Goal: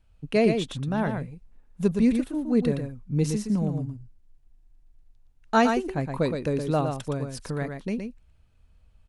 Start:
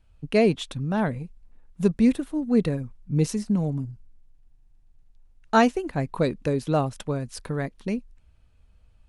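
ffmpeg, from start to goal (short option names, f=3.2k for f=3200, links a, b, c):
-af "aecho=1:1:117:0.501,volume=-2dB"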